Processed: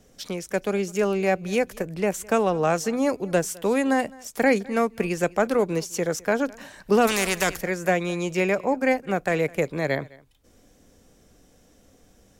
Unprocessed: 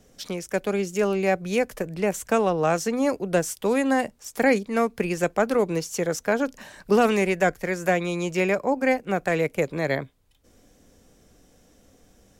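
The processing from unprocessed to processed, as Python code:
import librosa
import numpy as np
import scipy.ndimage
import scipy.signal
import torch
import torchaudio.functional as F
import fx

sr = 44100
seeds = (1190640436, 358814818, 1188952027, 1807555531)

p1 = x + fx.echo_single(x, sr, ms=209, db=-23.5, dry=0)
y = fx.spectral_comp(p1, sr, ratio=2.0, at=(7.07, 7.61))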